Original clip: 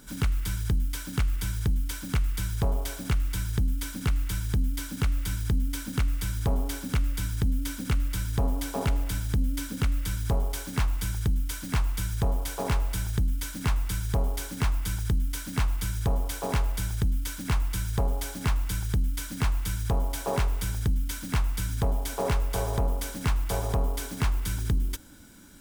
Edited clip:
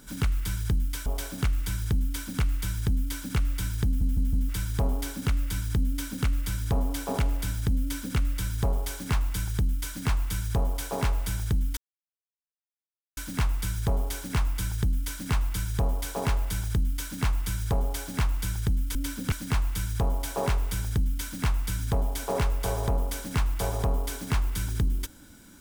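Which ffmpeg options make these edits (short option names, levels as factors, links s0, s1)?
-filter_complex "[0:a]asplit=9[s0][s1][s2][s3][s4][s5][s6][s7][s8];[s0]atrim=end=1.062[s9];[s1]atrim=start=2.728:end=5.682[s10];[s2]atrim=start=5.518:end=5.682[s11];[s3]atrim=start=5.518:end=5.682[s12];[s4]atrim=start=5.518:end=5.682[s13];[s5]atrim=start=6.158:end=13.44,asetpts=PTS-STARTPTS,afade=t=out:st=7.278:d=0.004:c=hsin,apad=pad_dur=1.4[s14];[s6]atrim=start=13.44:end=19.222,asetpts=PTS-STARTPTS,afade=t=in:d=0.004:c=hsin[s15];[s7]atrim=start=9.478:end=9.852[s16];[s8]atrim=start=19.218[s17];[s9][s10]acrossfade=d=0.004:c1=hsin:c2=hsin[s18];[s18][s11]acrossfade=d=0.004:c1=hsin:c2=hsin[s19];[s19][s12]acrossfade=d=0.004:c1=hsin:c2=hsin[s20];[s20][s13]acrossfade=d=0.004:c1=hsin:c2=hsin[s21];[s14][s15]concat=n=2:v=0:a=1[s22];[s21][s22]acrossfade=d=0.004:c1=hsin:c2=hsin[s23];[s23][s16]acrossfade=d=0.004:c1=hsin:c2=hsin[s24];[s24][s17]acrossfade=d=0.004:c1=hsin:c2=hsin"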